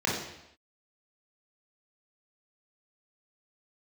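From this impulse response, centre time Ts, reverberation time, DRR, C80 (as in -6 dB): 53 ms, no single decay rate, -4.5 dB, 6.0 dB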